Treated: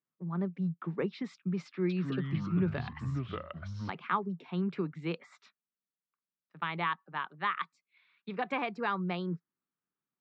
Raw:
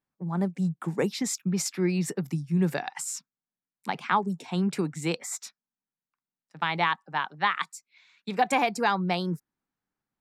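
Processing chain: 1.67–3.9 echoes that change speed 0.224 s, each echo -5 st, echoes 3; speaker cabinet 110–3500 Hz, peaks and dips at 170 Hz +4 dB, 380 Hz +4 dB, 790 Hz -6 dB, 1200 Hz +6 dB; gain -8 dB

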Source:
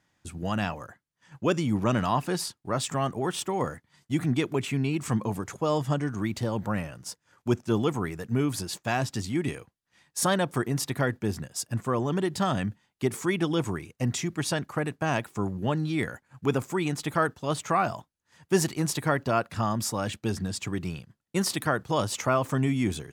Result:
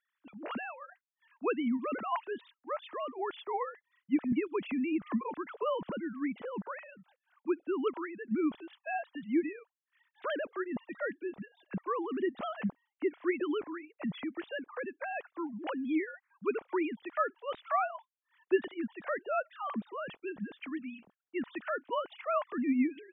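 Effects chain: sine-wave speech; 4.32–5.63 three-band squash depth 70%; gain -7 dB

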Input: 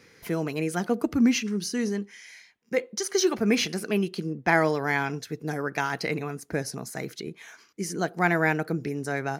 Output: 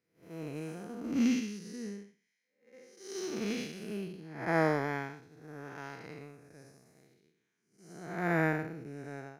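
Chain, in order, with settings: time blur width 0.294 s; upward expander 2.5:1, over -45 dBFS

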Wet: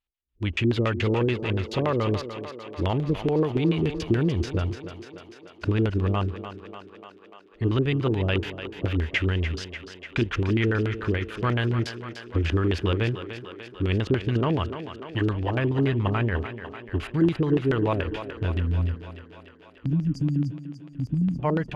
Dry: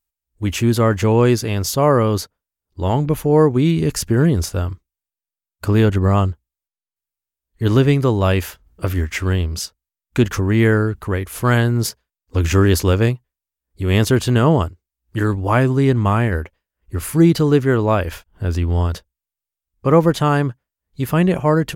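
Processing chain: spectral delete 18.59–21.39, 310–4600 Hz; dynamic EQ 260 Hz, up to -5 dB, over -26 dBFS, Q 0.97; compressor, threshold -16 dBFS, peak gain reduction 6 dB; LFO low-pass square 7 Hz 340–3000 Hz; on a send: thinning echo 0.295 s, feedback 71%, high-pass 230 Hz, level -9.5 dB; on the sum: gain -4.5 dB

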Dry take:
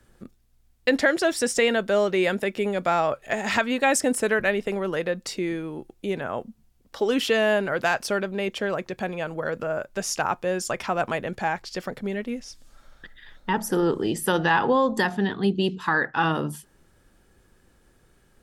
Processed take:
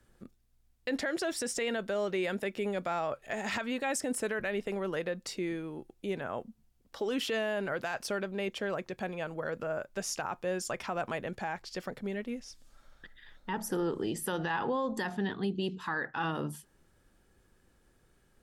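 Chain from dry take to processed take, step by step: limiter -17 dBFS, peak gain reduction 9 dB; gain -7 dB

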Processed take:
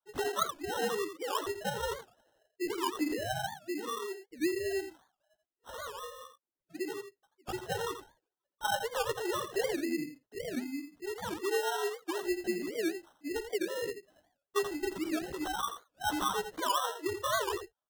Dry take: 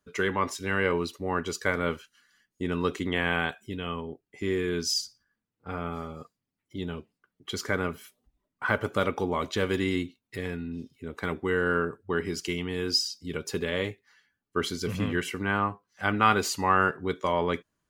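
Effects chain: sine-wave speech; dynamic EQ 390 Hz, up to +3 dB, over -42 dBFS, Q 3.8; compressor 3:1, threshold -28 dBFS, peak gain reduction 9 dB; chorus voices 6, 0.21 Hz, delay 14 ms, depth 3.5 ms; sample-and-hold 19×; on a send: echo 84 ms -9.5 dB; on the sum: record warp 78 rpm, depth 250 cents

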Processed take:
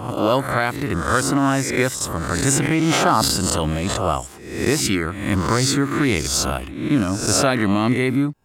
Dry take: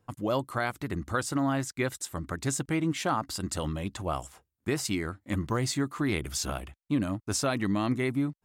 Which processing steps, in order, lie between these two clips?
spectral swells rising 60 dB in 0.71 s; 2.21–4.11 sustainer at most 23 dB/s; gain +8.5 dB

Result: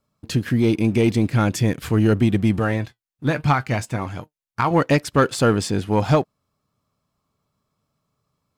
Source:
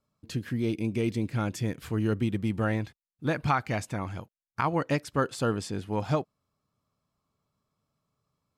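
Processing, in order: 2.59–4.71 flange 1.2 Hz, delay 6.4 ms, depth 2.5 ms, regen +62%; sample leveller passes 1; gain +7.5 dB

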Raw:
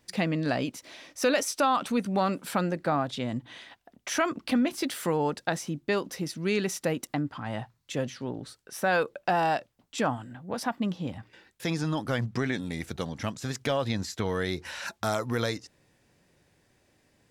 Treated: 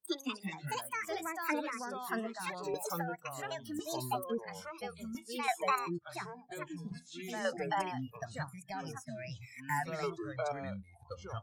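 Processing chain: speed glide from 175% -> 128%; spectral noise reduction 26 dB; chopper 0.73 Hz, depth 65%, duty 20%; echoes that change speed 0.133 s, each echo -5 st, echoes 3; gain -4 dB

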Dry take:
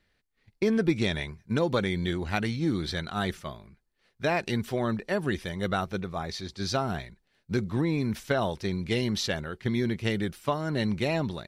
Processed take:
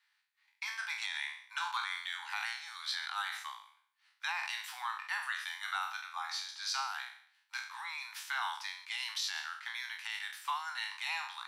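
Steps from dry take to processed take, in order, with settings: spectral trails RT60 0.57 s; steep high-pass 820 Hz 96 dB/oct; limiter -22 dBFS, peak gain reduction 8.5 dB; gain -3 dB

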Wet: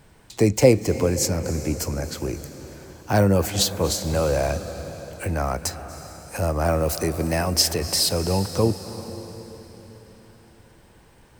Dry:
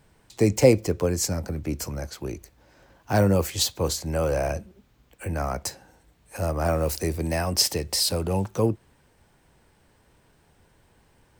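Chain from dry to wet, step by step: in parallel at -1 dB: compressor, threshold -35 dBFS, peak gain reduction 22.5 dB; on the sum: reverb RT60 4.0 s, pre-delay 0.23 s, DRR 10.5 dB; gain +1 dB

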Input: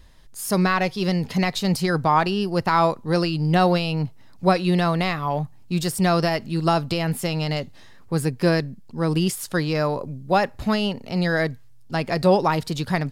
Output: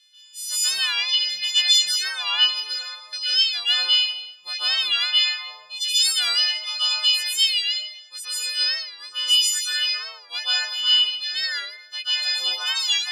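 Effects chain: frequency quantiser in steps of 3 st; reverb removal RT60 1.2 s; 2.6–3.13 compressor 10:1, threshold -28 dBFS, peak gain reduction 14 dB; ladder band-pass 3800 Hz, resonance 50%; plate-style reverb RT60 1 s, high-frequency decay 0.7×, pre-delay 0.12 s, DRR -10 dB; record warp 45 rpm, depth 100 cents; gain +6.5 dB

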